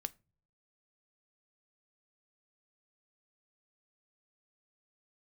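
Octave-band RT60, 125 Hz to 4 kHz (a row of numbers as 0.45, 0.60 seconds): 0.80, 0.55, 0.35, 0.25, 0.25, 0.20 seconds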